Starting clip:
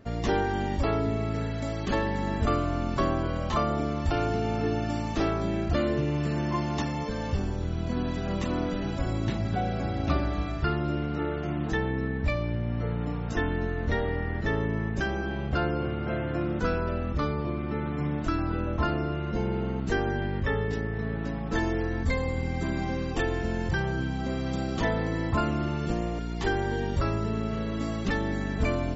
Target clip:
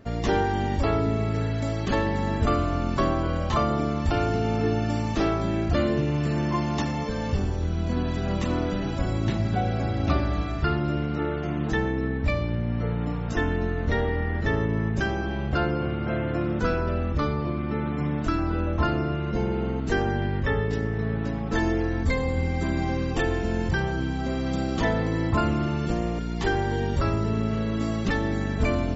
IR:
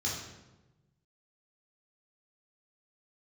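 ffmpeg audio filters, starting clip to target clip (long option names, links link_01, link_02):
-filter_complex "[0:a]asplit=2[link_01][link_02];[1:a]atrim=start_sample=2205,adelay=72[link_03];[link_02][link_03]afir=irnorm=-1:irlink=0,volume=-21dB[link_04];[link_01][link_04]amix=inputs=2:normalize=0,volume=2.5dB"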